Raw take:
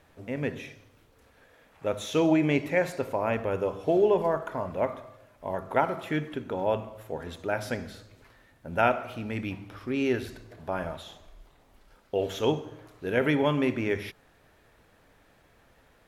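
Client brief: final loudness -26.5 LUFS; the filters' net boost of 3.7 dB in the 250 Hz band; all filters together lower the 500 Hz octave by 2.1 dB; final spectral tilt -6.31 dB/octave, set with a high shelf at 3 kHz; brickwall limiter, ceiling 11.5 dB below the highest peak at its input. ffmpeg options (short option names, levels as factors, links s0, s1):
-af "equalizer=f=250:t=o:g=6.5,equalizer=f=500:t=o:g=-4.5,highshelf=f=3000:g=-7,volume=2.11,alimiter=limit=0.178:level=0:latency=1"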